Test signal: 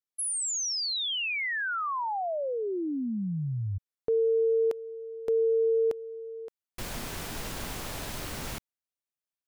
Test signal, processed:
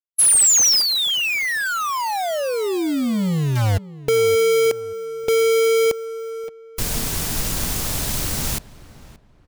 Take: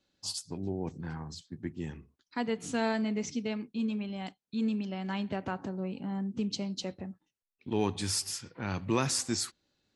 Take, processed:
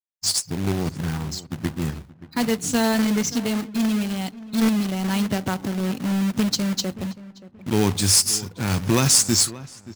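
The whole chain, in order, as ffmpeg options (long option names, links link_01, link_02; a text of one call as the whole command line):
ffmpeg -i in.wav -filter_complex "[0:a]bass=frequency=250:gain=7,treble=frequency=4000:gain=10,afftfilt=real='re*gte(hypot(re,im),0.00355)':imag='im*gte(hypot(re,im),0.00355)':win_size=1024:overlap=0.75,acrusher=bits=2:mode=log:mix=0:aa=0.000001,asplit=2[link_01][link_02];[link_02]adelay=577,lowpass=frequency=1900:poles=1,volume=-17dB,asplit=2[link_03][link_04];[link_04]adelay=577,lowpass=frequency=1900:poles=1,volume=0.31,asplit=2[link_05][link_06];[link_06]adelay=577,lowpass=frequency=1900:poles=1,volume=0.31[link_07];[link_01][link_03][link_05][link_07]amix=inputs=4:normalize=0,volume=6.5dB" out.wav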